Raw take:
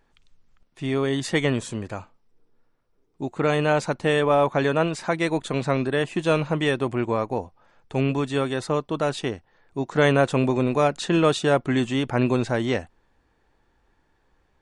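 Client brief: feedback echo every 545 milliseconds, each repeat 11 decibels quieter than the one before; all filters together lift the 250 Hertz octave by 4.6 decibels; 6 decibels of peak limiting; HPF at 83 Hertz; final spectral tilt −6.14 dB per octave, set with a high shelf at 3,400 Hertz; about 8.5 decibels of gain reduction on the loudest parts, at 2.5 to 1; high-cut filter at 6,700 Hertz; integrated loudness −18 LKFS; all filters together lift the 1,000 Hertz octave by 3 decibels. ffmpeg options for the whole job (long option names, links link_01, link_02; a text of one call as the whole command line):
ffmpeg -i in.wav -af "highpass=83,lowpass=6700,equalizer=frequency=250:width_type=o:gain=5.5,equalizer=frequency=1000:width_type=o:gain=4.5,highshelf=frequency=3400:gain=-7.5,acompressor=threshold=-25dB:ratio=2.5,alimiter=limit=-16.5dB:level=0:latency=1,aecho=1:1:545|1090|1635:0.282|0.0789|0.0221,volume=11dB" out.wav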